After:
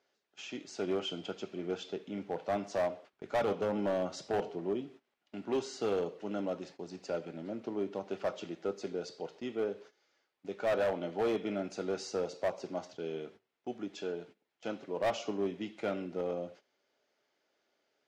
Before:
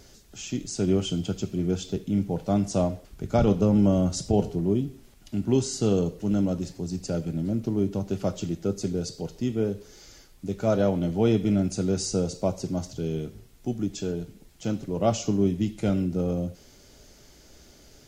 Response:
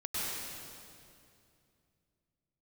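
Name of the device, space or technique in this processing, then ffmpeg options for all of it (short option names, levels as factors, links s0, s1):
walkie-talkie: -af "highpass=530,lowpass=2800,asoftclip=type=hard:threshold=0.0501,agate=range=0.141:threshold=0.00251:ratio=16:detection=peak"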